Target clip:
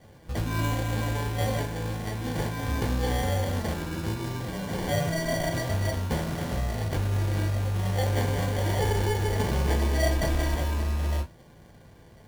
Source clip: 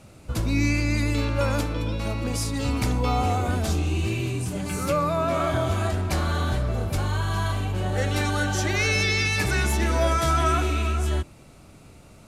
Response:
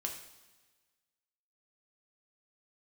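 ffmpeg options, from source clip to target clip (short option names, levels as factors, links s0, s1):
-filter_complex "[0:a]aexciter=amount=4.2:drive=9.5:freq=11000,acrusher=samples=34:mix=1:aa=0.000001[s0];[1:a]atrim=start_sample=2205,atrim=end_sample=3528,asetrate=66150,aresample=44100[s1];[s0][s1]afir=irnorm=-1:irlink=0"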